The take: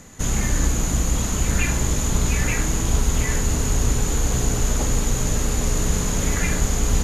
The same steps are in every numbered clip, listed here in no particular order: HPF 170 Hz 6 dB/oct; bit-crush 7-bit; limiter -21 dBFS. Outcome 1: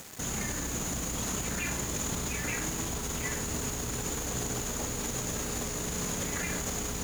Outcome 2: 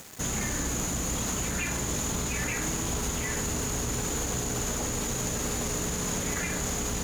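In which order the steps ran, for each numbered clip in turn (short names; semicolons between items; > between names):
limiter > HPF > bit-crush; HPF > bit-crush > limiter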